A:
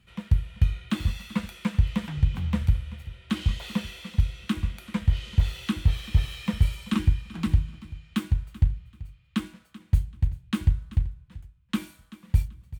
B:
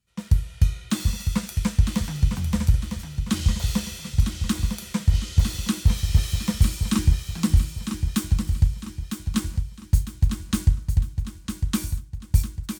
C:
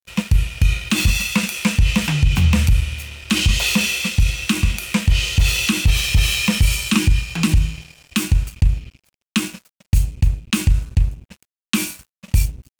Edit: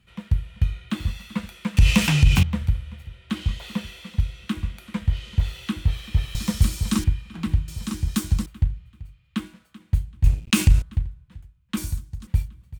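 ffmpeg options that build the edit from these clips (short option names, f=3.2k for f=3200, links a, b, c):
-filter_complex "[2:a]asplit=2[a][b];[1:a]asplit=3[c][d][e];[0:a]asplit=6[f][g][h][i][j][k];[f]atrim=end=1.772[l];[a]atrim=start=1.768:end=2.432[m];[g]atrim=start=2.428:end=6.352[n];[c]atrim=start=6.348:end=7.042[o];[h]atrim=start=7.038:end=7.682[p];[d]atrim=start=7.678:end=8.462[q];[i]atrim=start=8.458:end=10.242[r];[b]atrim=start=10.238:end=10.822[s];[j]atrim=start=10.818:end=11.772[t];[e]atrim=start=11.768:end=12.272[u];[k]atrim=start=12.268[v];[l][m]acrossfade=d=0.004:c1=hsin:c2=hsin[w];[w][n]acrossfade=d=0.004:c1=hsin:c2=hsin[x];[x][o]acrossfade=d=0.004:c1=hsin:c2=hsin[y];[y][p]acrossfade=d=0.004:c1=hsin:c2=hsin[z];[z][q]acrossfade=d=0.004:c1=hsin:c2=hsin[aa];[aa][r]acrossfade=d=0.004:c1=hsin:c2=hsin[ab];[ab][s]acrossfade=d=0.004:c1=hsin:c2=hsin[ac];[ac][t]acrossfade=d=0.004:c1=hsin:c2=hsin[ad];[ad][u]acrossfade=d=0.004:c1=hsin:c2=hsin[ae];[ae][v]acrossfade=d=0.004:c1=hsin:c2=hsin"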